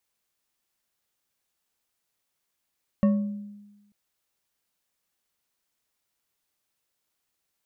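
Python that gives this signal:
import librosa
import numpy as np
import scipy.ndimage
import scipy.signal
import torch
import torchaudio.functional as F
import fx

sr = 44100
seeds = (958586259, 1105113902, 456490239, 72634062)

y = fx.strike_glass(sr, length_s=0.89, level_db=-15.5, body='bar', hz=205.0, decay_s=1.15, tilt_db=9.0, modes=5)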